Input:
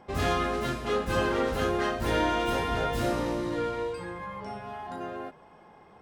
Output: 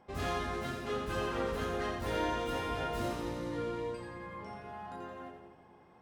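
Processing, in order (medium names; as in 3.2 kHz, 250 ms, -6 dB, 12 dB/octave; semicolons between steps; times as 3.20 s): two-band feedback delay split 370 Hz, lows 273 ms, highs 86 ms, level -6 dB; trim -8.5 dB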